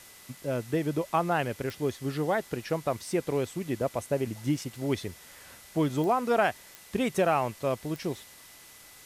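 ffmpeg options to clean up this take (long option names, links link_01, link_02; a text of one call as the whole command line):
ffmpeg -i in.wav -af "adeclick=threshold=4,bandreject=frequency=2000:width=30,afwtdn=0.0032" out.wav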